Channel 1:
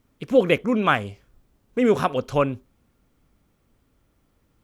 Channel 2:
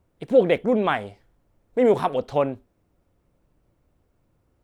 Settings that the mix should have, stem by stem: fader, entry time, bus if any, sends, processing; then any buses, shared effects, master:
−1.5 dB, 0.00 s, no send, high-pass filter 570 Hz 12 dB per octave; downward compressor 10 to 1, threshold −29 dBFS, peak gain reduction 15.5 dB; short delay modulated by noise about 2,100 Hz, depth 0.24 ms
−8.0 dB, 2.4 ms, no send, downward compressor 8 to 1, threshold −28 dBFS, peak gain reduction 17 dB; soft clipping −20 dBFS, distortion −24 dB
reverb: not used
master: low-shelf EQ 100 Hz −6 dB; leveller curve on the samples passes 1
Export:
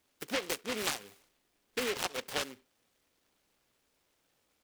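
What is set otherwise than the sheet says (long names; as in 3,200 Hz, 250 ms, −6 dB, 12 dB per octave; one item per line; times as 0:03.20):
stem 2 −8.0 dB → −18.5 dB
master: missing leveller curve on the samples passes 1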